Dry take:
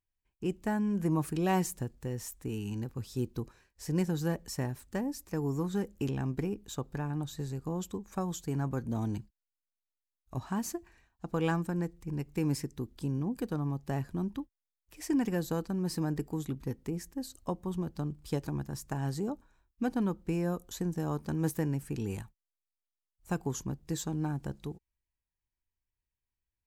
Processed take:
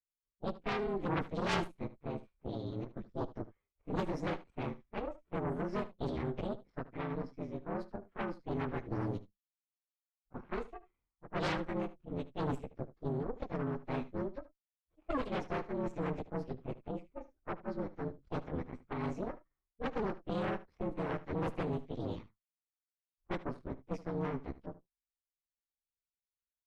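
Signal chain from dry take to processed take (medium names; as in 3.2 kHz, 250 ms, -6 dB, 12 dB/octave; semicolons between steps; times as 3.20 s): frequency axis rescaled in octaves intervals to 113%; low-pass 4.4 kHz 12 dB/octave; Chebyshev shaper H 3 -9 dB, 5 -27 dB, 8 -15 dB, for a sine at -18 dBFS; level-controlled noise filter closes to 1.1 kHz, open at -31.5 dBFS; on a send: delay 75 ms -17 dB; on the sum: trim +1 dB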